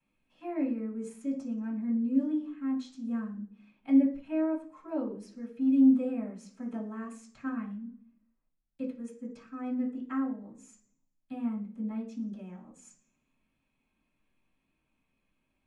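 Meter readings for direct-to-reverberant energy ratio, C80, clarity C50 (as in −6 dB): −13.5 dB, 13.5 dB, 9.0 dB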